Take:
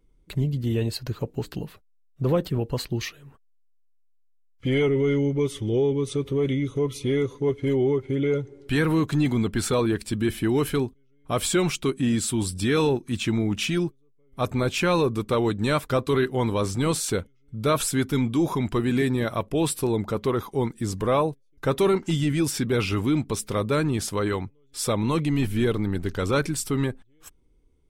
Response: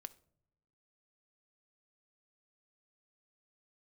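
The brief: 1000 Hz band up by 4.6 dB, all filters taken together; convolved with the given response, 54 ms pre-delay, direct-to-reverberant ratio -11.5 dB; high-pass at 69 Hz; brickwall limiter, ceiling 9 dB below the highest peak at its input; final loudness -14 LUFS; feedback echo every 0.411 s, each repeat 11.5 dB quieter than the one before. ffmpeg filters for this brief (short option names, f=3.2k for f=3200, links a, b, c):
-filter_complex "[0:a]highpass=69,equalizer=f=1k:t=o:g=5.5,alimiter=limit=-16.5dB:level=0:latency=1,aecho=1:1:411|822|1233:0.266|0.0718|0.0194,asplit=2[a][b];[1:a]atrim=start_sample=2205,adelay=54[c];[b][c]afir=irnorm=-1:irlink=0,volume=17dB[d];[a][d]amix=inputs=2:normalize=0,volume=0.5dB"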